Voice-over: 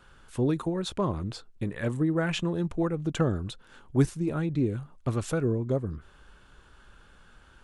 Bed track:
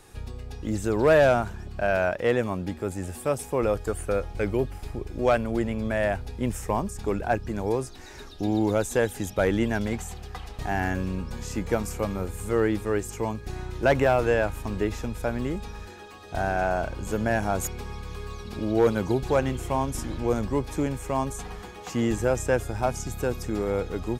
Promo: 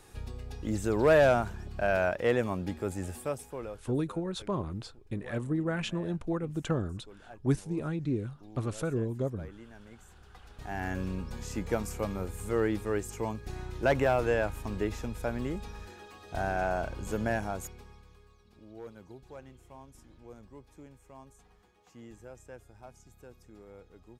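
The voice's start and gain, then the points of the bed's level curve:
3.50 s, -4.5 dB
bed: 3.1 s -3.5 dB
4.09 s -25.5 dB
9.79 s -25.5 dB
11.02 s -5 dB
17.29 s -5 dB
18.34 s -24.5 dB

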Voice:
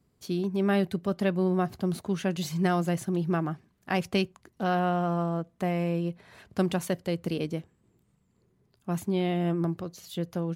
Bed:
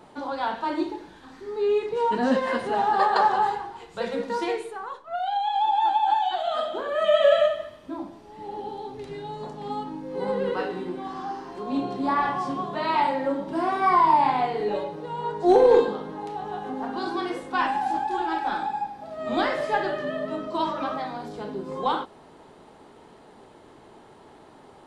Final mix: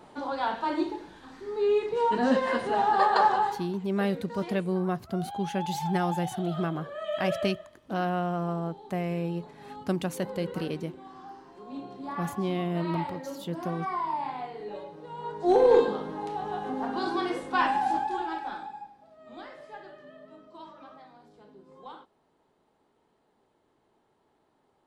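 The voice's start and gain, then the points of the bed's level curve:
3.30 s, -2.5 dB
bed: 3.33 s -1.5 dB
3.86 s -12.5 dB
14.65 s -12.5 dB
15.96 s -0.5 dB
17.91 s -0.5 dB
19.25 s -20 dB

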